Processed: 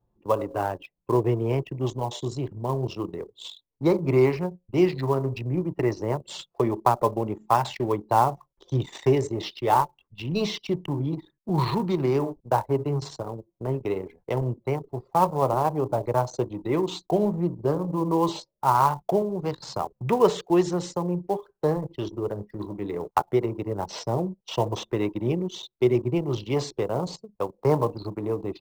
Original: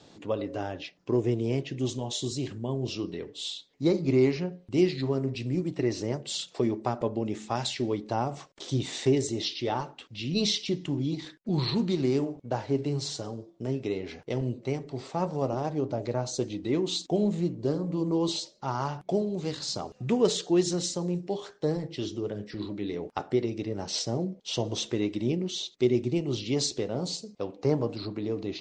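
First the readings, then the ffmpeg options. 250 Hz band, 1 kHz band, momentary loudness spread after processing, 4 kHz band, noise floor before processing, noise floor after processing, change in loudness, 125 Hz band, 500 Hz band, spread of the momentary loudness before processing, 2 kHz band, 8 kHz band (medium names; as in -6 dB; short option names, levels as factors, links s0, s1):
+1.0 dB, +11.5 dB, 10 LU, -5.0 dB, -59 dBFS, -78 dBFS, +3.5 dB, +3.5 dB, +4.5 dB, 9 LU, +3.5 dB, -6.0 dB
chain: -filter_complex "[0:a]anlmdn=6.31,equalizer=f=250:t=o:w=0.67:g=-8,equalizer=f=1000:t=o:w=0.67:g=11,equalizer=f=4000:t=o:w=0.67:g=-6,acrossover=split=3300[s0][s1];[s1]acompressor=threshold=0.00501:ratio=4:attack=1:release=60[s2];[s0][s2]amix=inputs=2:normalize=0,acrossover=split=190|710|3200[s3][s4][s5][s6];[s5]acrusher=bits=4:mode=log:mix=0:aa=0.000001[s7];[s3][s4][s7][s6]amix=inputs=4:normalize=0,volume=1.78"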